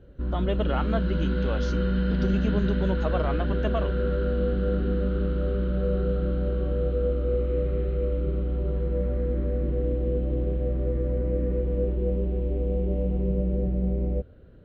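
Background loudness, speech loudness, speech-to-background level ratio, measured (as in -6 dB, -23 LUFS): -27.0 LUFS, -31.5 LUFS, -4.5 dB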